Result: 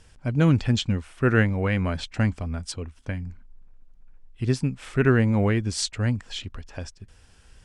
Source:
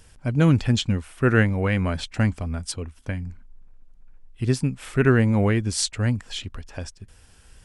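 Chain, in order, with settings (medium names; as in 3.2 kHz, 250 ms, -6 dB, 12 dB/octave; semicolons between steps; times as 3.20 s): low-pass 7.8 kHz 12 dB/octave; trim -1.5 dB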